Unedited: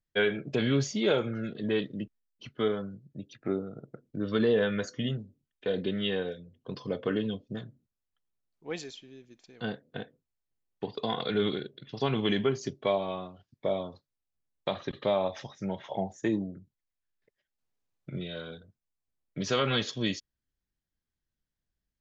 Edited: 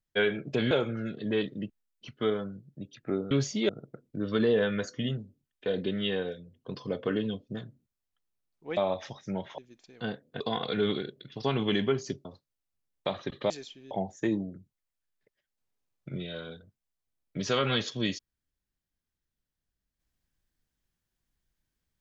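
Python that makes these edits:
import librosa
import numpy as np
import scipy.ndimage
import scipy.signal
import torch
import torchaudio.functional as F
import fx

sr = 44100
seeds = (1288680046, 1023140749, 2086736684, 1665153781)

y = fx.edit(x, sr, fx.move(start_s=0.71, length_s=0.38, to_s=3.69),
    fx.swap(start_s=8.77, length_s=0.41, other_s=15.11, other_length_s=0.81),
    fx.cut(start_s=10.0, length_s=0.97),
    fx.cut(start_s=12.82, length_s=1.04), tone=tone)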